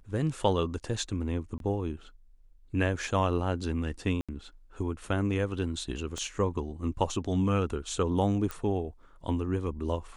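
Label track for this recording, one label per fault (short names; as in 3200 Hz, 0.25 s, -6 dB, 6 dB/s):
1.580000	1.600000	gap 22 ms
4.210000	4.290000	gap 76 ms
6.180000	6.180000	pop -24 dBFS
8.510000	8.510000	pop -20 dBFS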